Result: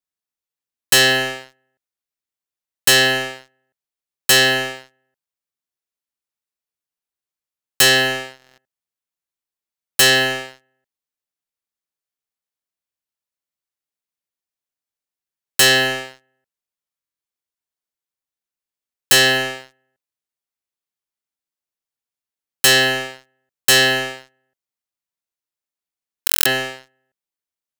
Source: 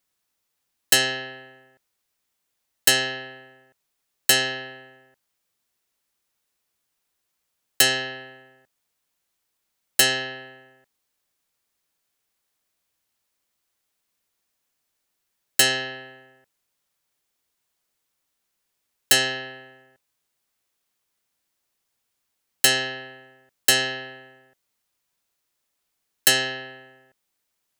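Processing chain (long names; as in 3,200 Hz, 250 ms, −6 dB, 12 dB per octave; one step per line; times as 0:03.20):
leveller curve on the samples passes 5
buffer that repeats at 0:08.37/0:16.99/0:26.25, samples 1,024, times 8
level −4.5 dB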